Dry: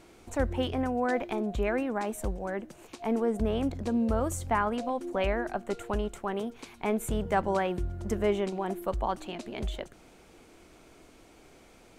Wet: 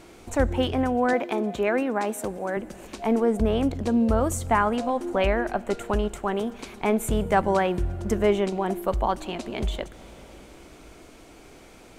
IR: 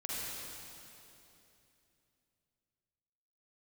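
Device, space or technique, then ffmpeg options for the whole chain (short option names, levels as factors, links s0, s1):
compressed reverb return: -filter_complex "[0:a]asplit=2[s0][s1];[1:a]atrim=start_sample=2205[s2];[s1][s2]afir=irnorm=-1:irlink=0,acompressor=threshold=0.0178:ratio=6,volume=0.237[s3];[s0][s3]amix=inputs=2:normalize=0,asettb=1/sr,asplit=3[s4][s5][s6];[s4]atrim=end=1.134[s7];[s5]atrim=start=1.13:end=2.57,asetpts=PTS-STARTPTS,afade=t=in:d=0.004:c=qsin,afade=t=out:st=1.436:d=0.004:c=qsin,highpass=190[s8];[s6]atrim=start=2.566[s9];[s7][s8]acrossfade=d=0.004:c1=hsin:c2=qsin[s10];[s10][s9]acrossfade=d=0.004:c1=qsin:c2=hsin,volume=1.88"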